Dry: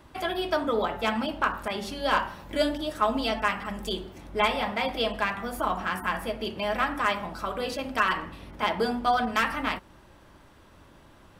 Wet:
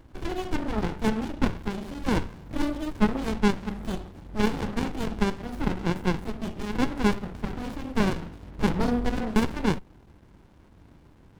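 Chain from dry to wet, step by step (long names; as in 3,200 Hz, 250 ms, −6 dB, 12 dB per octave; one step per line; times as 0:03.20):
0:08.58–0:09.16: low-shelf EQ 270 Hz +11 dB
windowed peak hold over 65 samples
level +2.5 dB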